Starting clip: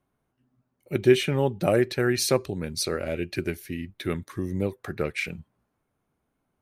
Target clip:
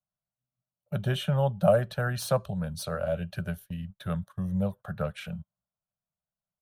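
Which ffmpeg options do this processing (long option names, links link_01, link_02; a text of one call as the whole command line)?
ffmpeg -i in.wav -filter_complex "[0:a]acrossover=split=160|1300|6800[link_01][link_02][link_03][link_04];[link_04]aeval=exprs='0.0398*(abs(mod(val(0)/0.0398+3,4)-2)-1)':channel_layout=same[link_05];[link_01][link_02][link_03][link_05]amix=inputs=4:normalize=0,agate=range=-20dB:threshold=-39dB:ratio=16:detection=peak,firequalizer=gain_entry='entry(100,0);entry(190,4);entry(300,-28);entry(590,5);entry(830,-1);entry(1500,0);entry(2100,-20);entry(3100,-2);entry(4700,-13);entry(11000,-5)':delay=0.05:min_phase=1" out.wav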